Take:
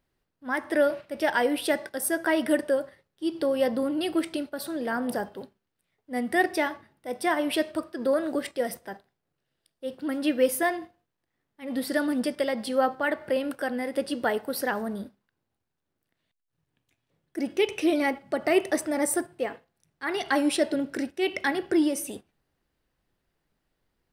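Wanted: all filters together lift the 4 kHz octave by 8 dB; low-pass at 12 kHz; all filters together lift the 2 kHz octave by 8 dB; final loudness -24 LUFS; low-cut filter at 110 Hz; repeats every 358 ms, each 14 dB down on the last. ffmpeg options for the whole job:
-af "highpass=110,lowpass=12000,equalizer=f=2000:t=o:g=8,equalizer=f=4000:t=o:g=7.5,aecho=1:1:358|716:0.2|0.0399,volume=1.06"

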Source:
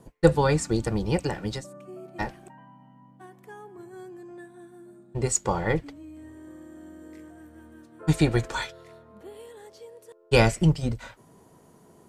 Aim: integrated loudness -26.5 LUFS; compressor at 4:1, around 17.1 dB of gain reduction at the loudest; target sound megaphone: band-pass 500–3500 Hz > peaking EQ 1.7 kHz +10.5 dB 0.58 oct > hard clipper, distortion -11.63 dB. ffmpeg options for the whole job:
-af "acompressor=threshold=0.0224:ratio=4,highpass=500,lowpass=3500,equalizer=f=1700:t=o:w=0.58:g=10.5,asoftclip=type=hard:threshold=0.0282,volume=7.08"

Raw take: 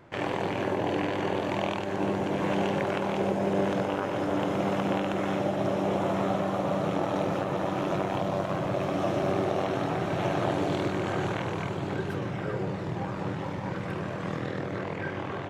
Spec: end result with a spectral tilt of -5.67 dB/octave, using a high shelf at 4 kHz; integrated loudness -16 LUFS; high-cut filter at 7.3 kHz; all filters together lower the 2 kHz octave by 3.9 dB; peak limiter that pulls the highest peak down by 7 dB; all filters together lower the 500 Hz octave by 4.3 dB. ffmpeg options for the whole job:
-af "lowpass=7300,equalizer=f=500:t=o:g=-5.5,equalizer=f=2000:t=o:g=-6.5,highshelf=f=4000:g=7,volume=7.94,alimiter=limit=0.501:level=0:latency=1"

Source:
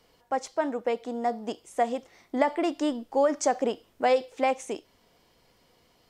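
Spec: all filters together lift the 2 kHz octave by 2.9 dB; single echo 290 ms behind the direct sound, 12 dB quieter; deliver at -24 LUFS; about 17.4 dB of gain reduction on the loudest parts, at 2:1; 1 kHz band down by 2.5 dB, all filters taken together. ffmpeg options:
-af "equalizer=f=1000:t=o:g=-4.5,equalizer=f=2000:t=o:g=4.5,acompressor=threshold=0.00251:ratio=2,aecho=1:1:290:0.251,volume=10"

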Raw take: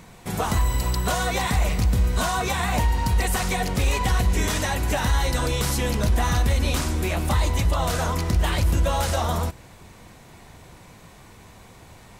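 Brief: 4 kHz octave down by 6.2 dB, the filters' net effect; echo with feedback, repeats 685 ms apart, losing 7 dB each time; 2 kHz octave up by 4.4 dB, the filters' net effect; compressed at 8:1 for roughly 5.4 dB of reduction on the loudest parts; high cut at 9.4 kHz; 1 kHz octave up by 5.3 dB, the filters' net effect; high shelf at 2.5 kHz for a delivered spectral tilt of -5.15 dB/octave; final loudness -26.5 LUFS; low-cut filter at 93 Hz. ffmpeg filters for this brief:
-af "highpass=93,lowpass=9400,equalizer=f=1000:t=o:g=6,equalizer=f=2000:t=o:g=7,highshelf=f=2500:g=-4,equalizer=f=4000:t=o:g=-7.5,acompressor=threshold=0.0708:ratio=8,aecho=1:1:685|1370|2055|2740|3425:0.447|0.201|0.0905|0.0407|0.0183,volume=1.06"

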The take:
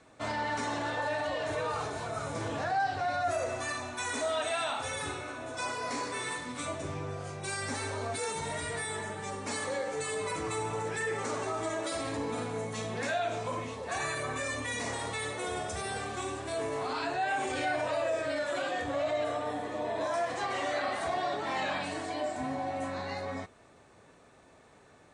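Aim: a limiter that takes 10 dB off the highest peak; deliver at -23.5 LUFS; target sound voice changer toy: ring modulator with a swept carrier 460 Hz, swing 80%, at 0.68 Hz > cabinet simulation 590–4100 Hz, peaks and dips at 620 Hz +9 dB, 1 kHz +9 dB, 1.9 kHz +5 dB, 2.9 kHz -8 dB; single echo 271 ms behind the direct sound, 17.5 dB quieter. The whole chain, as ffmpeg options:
-af "alimiter=level_in=2.24:limit=0.0631:level=0:latency=1,volume=0.447,aecho=1:1:271:0.133,aeval=exprs='val(0)*sin(2*PI*460*n/s+460*0.8/0.68*sin(2*PI*0.68*n/s))':c=same,highpass=590,equalizer=f=620:t=q:w=4:g=9,equalizer=f=1000:t=q:w=4:g=9,equalizer=f=1900:t=q:w=4:g=5,equalizer=f=2900:t=q:w=4:g=-8,lowpass=f=4100:w=0.5412,lowpass=f=4100:w=1.3066,volume=6.31"

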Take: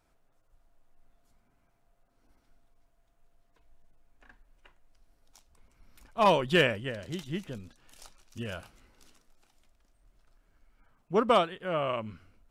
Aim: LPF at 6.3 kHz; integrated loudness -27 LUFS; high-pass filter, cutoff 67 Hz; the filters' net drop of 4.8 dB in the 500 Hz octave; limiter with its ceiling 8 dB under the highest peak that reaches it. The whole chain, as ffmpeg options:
-af "highpass=67,lowpass=6300,equalizer=f=500:t=o:g=-6,volume=2.51,alimiter=limit=0.211:level=0:latency=1"

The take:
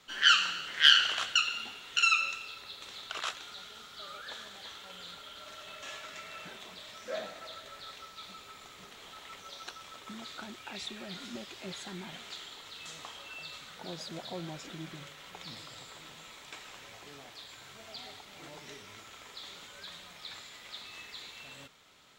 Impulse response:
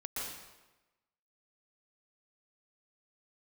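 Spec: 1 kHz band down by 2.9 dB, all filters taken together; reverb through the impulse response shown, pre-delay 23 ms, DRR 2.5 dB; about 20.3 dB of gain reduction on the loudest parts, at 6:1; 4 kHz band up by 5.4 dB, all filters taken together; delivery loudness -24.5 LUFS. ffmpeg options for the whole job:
-filter_complex "[0:a]equalizer=f=1000:t=o:g=-6,equalizer=f=4000:t=o:g=8.5,acompressor=threshold=0.0224:ratio=6,asplit=2[s0][s1];[1:a]atrim=start_sample=2205,adelay=23[s2];[s1][s2]afir=irnorm=-1:irlink=0,volume=0.596[s3];[s0][s3]amix=inputs=2:normalize=0,volume=4.22"

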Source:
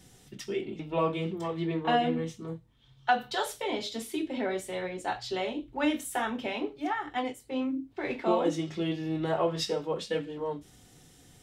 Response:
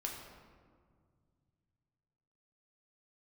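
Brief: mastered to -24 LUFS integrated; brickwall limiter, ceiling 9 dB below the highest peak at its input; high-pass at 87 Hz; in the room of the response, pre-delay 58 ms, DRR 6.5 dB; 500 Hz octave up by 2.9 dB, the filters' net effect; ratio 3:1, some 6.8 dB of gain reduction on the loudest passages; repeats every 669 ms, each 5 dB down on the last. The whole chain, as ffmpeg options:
-filter_complex "[0:a]highpass=87,equalizer=f=500:t=o:g=3.5,acompressor=threshold=0.0398:ratio=3,alimiter=level_in=1.12:limit=0.0631:level=0:latency=1,volume=0.891,aecho=1:1:669|1338|2007|2676|3345|4014|4683:0.562|0.315|0.176|0.0988|0.0553|0.031|0.0173,asplit=2[s0][s1];[1:a]atrim=start_sample=2205,adelay=58[s2];[s1][s2]afir=irnorm=-1:irlink=0,volume=0.447[s3];[s0][s3]amix=inputs=2:normalize=0,volume=2.82"

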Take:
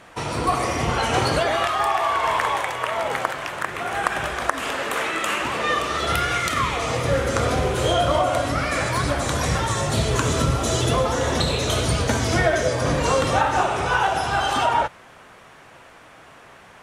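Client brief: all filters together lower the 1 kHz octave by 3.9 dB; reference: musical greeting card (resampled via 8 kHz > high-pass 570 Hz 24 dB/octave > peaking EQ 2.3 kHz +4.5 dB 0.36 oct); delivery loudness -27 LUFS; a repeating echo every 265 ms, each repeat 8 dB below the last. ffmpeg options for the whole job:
-af "equalizer=f=1000:t=o:g=-5,aecho=1:1:265|530|795|1060|1325:0.398|0.159|0.0637|0.0255|0.0102,aresample=8000,aresample=44100,highpass=f=570:w=0.5412,highpass=f=570:w=1.3066,equalizer=f=2300:t=o:w=0.36:g=4.5,volume=0.75"

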